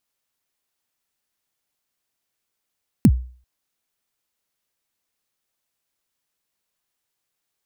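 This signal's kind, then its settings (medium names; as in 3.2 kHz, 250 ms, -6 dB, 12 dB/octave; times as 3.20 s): kick drum length 0.39 s, from 280 Hz, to 62 Hz, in 58 ms, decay 0.43 s, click on, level -5.5 dB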